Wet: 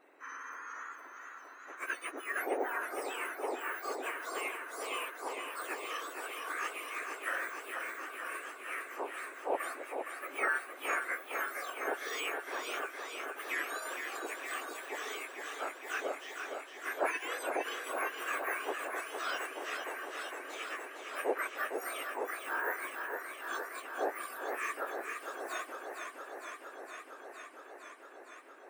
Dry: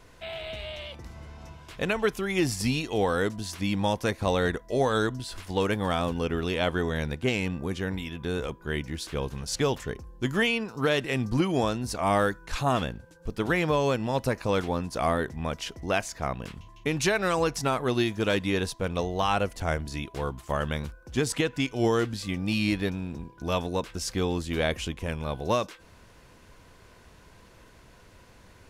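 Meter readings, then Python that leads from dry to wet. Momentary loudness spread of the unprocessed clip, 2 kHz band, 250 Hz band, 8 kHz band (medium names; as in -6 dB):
10 LU, -3.0 dB, -20.5 dB, -7.5 dB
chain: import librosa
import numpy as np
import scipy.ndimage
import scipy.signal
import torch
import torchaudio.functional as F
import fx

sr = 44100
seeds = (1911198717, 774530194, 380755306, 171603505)

y = fx.octave_mirror(x, sr, pivot_hz=2000.0)
y = fx.high_shelf_res(y, sr, hz=3000.0, db=-13.0, q=1.5)
y = fx.echo_warbled(y, sr, ms=461, feedback_pct=80, rate_hz=2.8, cents=74, wet_db=-6)
y = y * 10.0 ** (-4.5 / 20.0)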